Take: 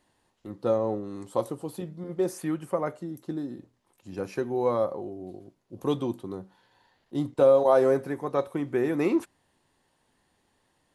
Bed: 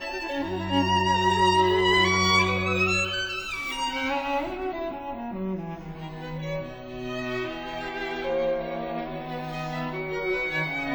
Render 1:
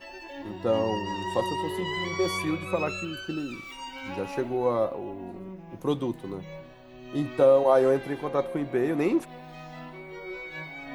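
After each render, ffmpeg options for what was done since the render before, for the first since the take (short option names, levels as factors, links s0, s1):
-filter_complex "[1:a]volume=0.282[s0];[0:a][s0]amix=inputs=2:normalize=0"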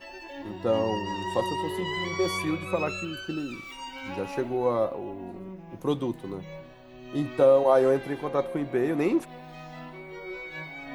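-af anull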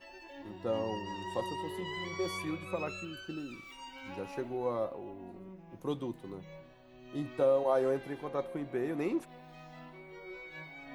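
-af "volume=0.376"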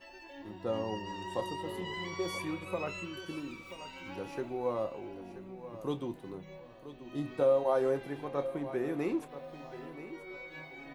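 -filter_complex "[0:a]asplit=2[s0][s1];[s1]adelay=28,volume=0.211[s2];[s0][s2]amix=inputs=2:normalize=0,aecho=1:1:981|1962|2943:0.211|0.0697|0.023"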